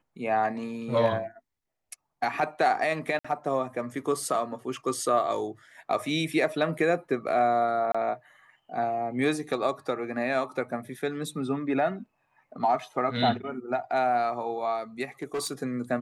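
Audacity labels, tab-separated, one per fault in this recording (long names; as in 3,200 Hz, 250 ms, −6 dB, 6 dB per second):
3.190000	3.250000	drop-out 55 ms
7.920000	7.950000	drop-out 25 ms
15.220000	15.530000	clipping −26 dBFS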